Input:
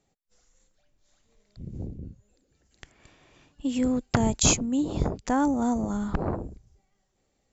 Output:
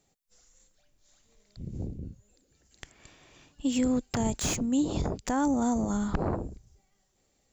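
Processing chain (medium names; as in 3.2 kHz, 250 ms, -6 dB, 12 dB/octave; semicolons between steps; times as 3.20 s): peak limiter -18.5 dBFS, peak gain reduction 11 dB; treble shelf 4.2 kHz +8 dB; slew-rate limiter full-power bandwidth 180 Hz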